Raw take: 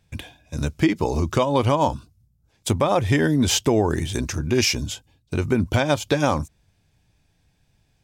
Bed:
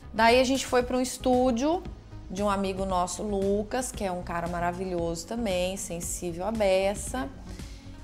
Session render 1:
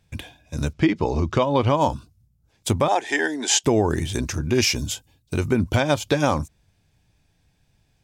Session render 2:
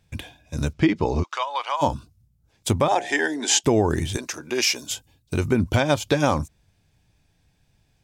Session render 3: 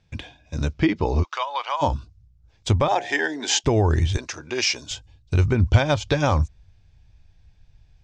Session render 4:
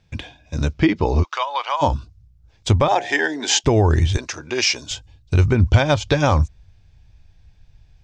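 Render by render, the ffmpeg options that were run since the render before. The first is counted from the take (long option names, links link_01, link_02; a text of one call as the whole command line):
ffmpeg -i in.wav -filter_complex "[0:a]asettb=1/sr,asplit=3[link_01][link_02][link_03];[link_01]atrim=end=0.734[link_04];[link_02]atrim=start=0.73:end=1.75,asetpts=PTS-STARTPTS,afade=type=in:duration=0.004:curve=qsin,afade=type=out:start_time=1.016:duration=0.004:curve=qsin,lowpass=4600[link_05];[link_03]atrim=start=1.746[link_06];[link_04][link_05]acrossfade=duration=0.004:curve1=hsin:curve2=qsin[link_07];[link_07][link_06]acrossfade=duration=0.004:curve1=qsin:curve2=hsin,asettb=1/sr,asplit=3[link_08][link_09][link_10];[link_08]atrim=end=2.884[link_11];[link_09]atrim=start=2.88:end=3.64,asetpts=PTS-STARTPTS,afade=type=in:duration=0.004:curve=qsin,afade=type=out:start_time=0.756:duration=0.004:curve=qsin,highpass=frequency=350:width=0.5412,highpass=frequency=350:width=1.3066,equalizer=frequency=530:width_type=q:width=4:gain=-9,equalizer=frequency=810:width_type=q:width=4:gain=8,equalizer=frequency=1200:width_type=q:width=4:gain=-10,equalizer=frequency=1700:width_type=q:width=4:gain=7,equalizer=frequency=7000:width_type=q:width=4:gain=6,lowpass=frequency=9800:width=0.5412,lowpass=frequency=9800:width=1.3066[link_12];[link_10]atrim=start=3.636[link_13];[link_11][link_12]acrossfade=duration=0.004:curve1=hsin:curve2=qsin[link_14];[link_14][link_13]acrossfade=duration=0.004:curve1=qsin:curve2=hsin,asettb=1/sr,asplit=3[link_15][link_16][link_17];[link_15]atrim=end=4.754[link_18];[link_16]atrim=start=4.75:end=5.48,asetpts=PTS-STARTPTS,afade=type=in:duration=0.004:curve=qsin,afade=type=out:start_time=0.726:duration=0.004:curve=qsin,highshelf=frequency=7300:gain=9[link_19];[link_17]atrim=start=5.476[link_20];[link_18][link_19]acrossfade=duration=0.004:curve1=hsin:curve2=qsin[link_21];[link_21][link_20]acrossfade=duration=0.004:curve1=qsin:curve2=hsin" out.wav
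ffmpeg -i in.wav -filter_complex "[0:a]asplit=3[link_01][link_02][link_03];[link_01]afade=type=out:start_time=1.22:duration=0.02[link_04];[link_02]highpass=frequency=820:width=0.5412,highpass=frequency=820:width=1.3066,afade=type=in:start_time=1.22:duration=0.02,afade=type=out:start_time=1.81:duration=0.02[link_05];[link_03]afade=type=in:start_time=1.81:duration=0.02[link_06];[link_04][link_05][link_06]amix=inputs=3:normalize=0,asplit=3[link_07][link_08][link_09];[link_07]afade=type=out:start_time=2.9:duration=0.02[link_10];[link_08]bandreject=frequency=64.65:width_type=h:width=4,bandreject=frequency=129.3:width_type=h:width=4,bandreject=frequency=193.95:width_type=h:width=4,bandreject=frequency=258.6:width_type=h:width=4,bandreject=frequency=323.25:width_type=h:width=4,bandreject=frequency=387.9:width_type=h:width=4,bandreject=frequency=452.55:width_type=h:width=4,bandreject=frequency=517.2:width_type=h:width=4,bandreject=frequency=581.85:width_type=h:width=4,bandreject=frequency=646.5:width_type=h:width=4,bandreject=frequency=711.15:width_type=h:width=4,bandreject=frequency=775.8:width_type=h:width=4,bandreject=frequency=840.45:width_type=h:width=4,afade=type=in:start_time=2.9:duration=0.02,afade=type=out:start_time=3.59:duration=0.02[link_11];[link_09]afade=type=in:start_time=3.59:duration=0.02[link_12];[link_10][link_11][link_12]amix=inputs=3:normalize=0,asettb=1/sr,asplit=3[link_13][link_14][link_15];[link_13]atrim=end=4.174[link_16];[link_14]atrim=start=4.17:end=4.91,asetpts=PTS-STARTPTS,afade=type=in:duration=0.004:curve=qsin,afade=type=out:start_time=0.736:duration=0.004:curve=qsin,highpass=430[link_17];[link_15]atrim=start=4.906[link_18];[link_16][link_17]acrossfade=duration=0.004:curve1=hsin:curve2=qsin[link_19];[link_19][link_18]acrossfade=duration=0.004:curve1=qsin:curve2=hsin" out.wav
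ffmpeg -i in.wav -af "lowpass=frequency=6300:width=0.5412,lowpass=frequency=6300:width=1.3066,asubboost=boost=7:cutoff=82" out.wav
ffmpeg -i in.wav -af "volume=3.5dB,alimiter=limit=-2dB:level=0:latency=1" out.wav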